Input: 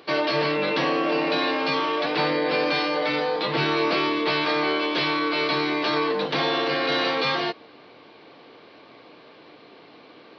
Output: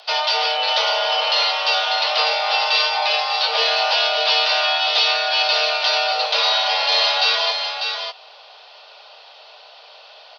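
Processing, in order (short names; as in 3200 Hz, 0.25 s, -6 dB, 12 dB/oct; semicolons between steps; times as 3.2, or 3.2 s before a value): resonant high shelf 2200 Hz +7.5 dB, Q 1.5; frequency shift +310 Hz; echo 0.596 s -6 dB; gain +1 dB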